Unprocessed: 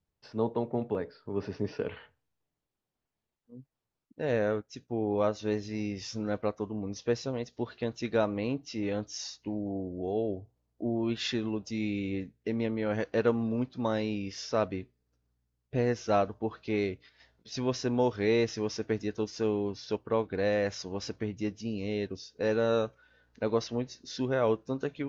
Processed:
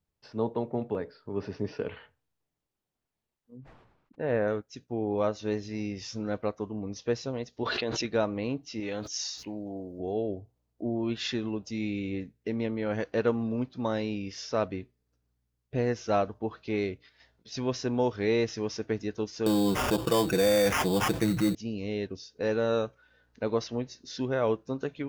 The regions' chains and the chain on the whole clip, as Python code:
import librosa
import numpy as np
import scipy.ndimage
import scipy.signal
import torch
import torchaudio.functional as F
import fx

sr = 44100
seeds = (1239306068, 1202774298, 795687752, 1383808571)

y = fx.chain(x, sr, fx.lowpass(hz=2200.0, slope=12),
    fx.peak_eq(hz=1100.0, db=2.5, octaves=1.6),
    fx.sustainer(db_per_s=62.0), at=(3.57, 4.48))
y = fx.chain(y, sr, fx.lowpass(hz=6200.0, slope=12),
    fx.bass_treble(bass_db=-10, treble_db=1),
    fx.env_flatten(amount_pct=100), at=(7.63, 8.05))
y = fx.chain(y, sr, fx.tilt_eq(slope=2.0),
    fx.sustainer(db_per_s=72.0), at=(8.8, 10.0))
y = fx.chain(y, sr, fx.comb(ms=6.0, depth=0.83),
    fx.sample_hold(seeds[0], rate_hz=4100.0, jitter_pct=0),
    fx.env_flatten(amount_pct=70), at=(19.46, 21.55))